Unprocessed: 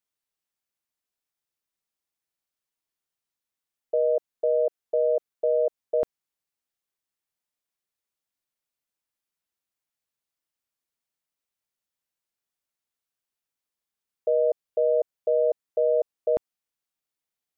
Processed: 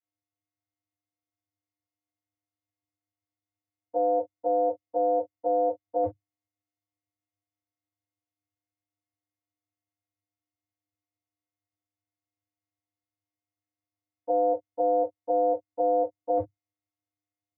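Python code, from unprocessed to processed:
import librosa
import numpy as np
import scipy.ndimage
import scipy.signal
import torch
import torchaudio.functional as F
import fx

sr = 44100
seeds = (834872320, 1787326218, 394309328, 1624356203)

y = fx.vocoder(x, sr, bands=16, carrier='square', carrier_hz=101.0)
y = fx.rev_gated(y, sr, seeds[0], gate_ms=80, shape='falling', drr_db=-7.0)
y = y * 10.0 ** (-6.5 / 20.0)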